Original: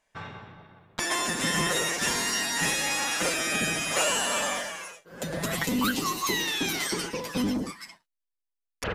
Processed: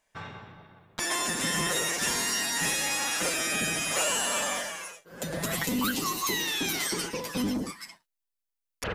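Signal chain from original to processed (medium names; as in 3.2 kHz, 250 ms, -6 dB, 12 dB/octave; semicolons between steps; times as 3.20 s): in parallel at -2.5 dB: peak limiter -21.5 dBFS, peak gain reduction 8 dB; on the sum: treble shelf 7.7 kHz +6 dB; trim -6 dB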